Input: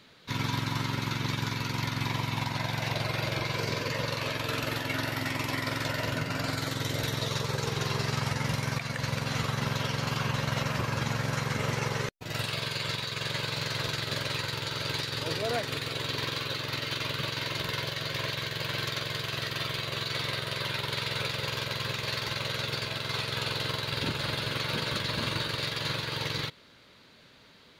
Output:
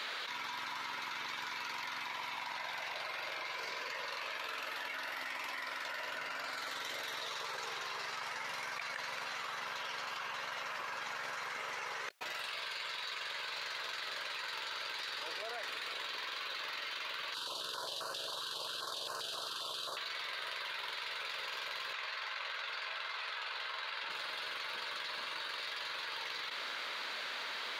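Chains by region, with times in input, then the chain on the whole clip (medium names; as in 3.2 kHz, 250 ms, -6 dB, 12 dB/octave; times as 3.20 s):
17.34–19.97 s: CVSD coder 64 kbps + Butterworth band-stop 2.1 kHz, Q 1.2 + step-sequenced notch 7.5 Hz 670–3400 Hz
21.93–24.10 s: low-pass 2.2 kHz 6 dB/octave + peaking EQ 230 Hz -15 dB 2 oct
whole clip: high-pass 1 kHz 12 dB/octave; treble shelf 3.4 kHz -11 dB; level flattener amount 100%; trim -7 dB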